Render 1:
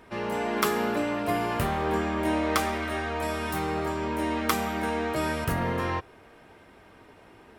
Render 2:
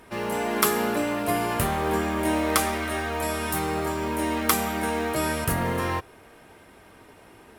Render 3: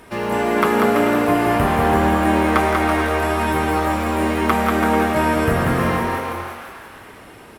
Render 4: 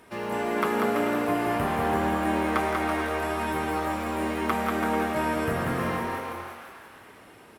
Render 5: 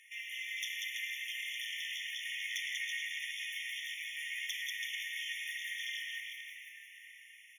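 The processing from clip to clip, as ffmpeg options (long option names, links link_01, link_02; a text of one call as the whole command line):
ffmpeg -i in.wav -filter_complex "[0:a]asplit=2[link_01][link_02];[link_02]acrusher=bits=5:mode=log:mix=0:aa=0.000001,volume=-4dB[link_03];[link_01][link_03]amix=inputs=2:normalize=0,equalizer=frequency=11000:width=0.71:gain=10,volume=-2.5dB" out.wav
ffmpeg -i in.wav -filter_complex "[0:a]asplit=2[link_01][link_02];[link_02]asplit=8[link_03][link_04][link_05][link_06][link_07][link_08][link_09][link_10];[link_03]adelay=168,afreqshift=150,volume=-12.5dB[link_11];[link_04]adelay=336,afreqshift=300,volume=-16.2dB[link_12];[link_05]adelay=504,afreqshift=450,volume=-20dB[link_13];[link_06]adelay=672,afreqshift=600,volume=-23.7dB[link_14];[link_07]adelay=840,afreqshift=750,volume=-27.5dB[link_15];[link_08]adelay=1008,afreqshift=900,volume=-31.2dB[link_16];[link_09]adelay=1176,afreqshift=1050,volume=-35dB[link_17];[link_10]adelay=1344,afreqshift=1200,volume=-38.7dB[link_18];[link_11][link_12][link_13][link_14][link_15][link_16][link_17][link_18]amix=inputs=8:normalize=0[link_19];[link_01][link_19]amix=inputs=2:normalize=0,acrossover=split=2600[link_20][link_21];[link_21]acompressor=threshold=-44dB:ratio=4:attack=1:release=60[link_22];[link_20][link_22]amix=inputs=2:normalize=0,asplit=2[link_23][link_24];[link_24]aecho=0:1:190|332.5|439.4|519.5|579.6:0.631|0.398|0.251|0.158|0.1[link_25];[link_23][link_25]amix=inputs=2:normalize=0,volume=6dB" out.wav
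ffmpeg -i in.wav -af "highpass=frequency=100:poles=1,volume=-8.5dB" out.wav
ffmpeg -i in.wav -af "highpass=frequency=1100:width_type=q:width=4.9,asoftclip=type=tanh:threshold=-23dB,afftfilt=real='re*eq(mod(floor(b*sr/1024/1800),2),1)':imag='im*eq(mod(floor(b*sr/1024/1800),2),1)':win_size=1024:overlap=0.75" out.wav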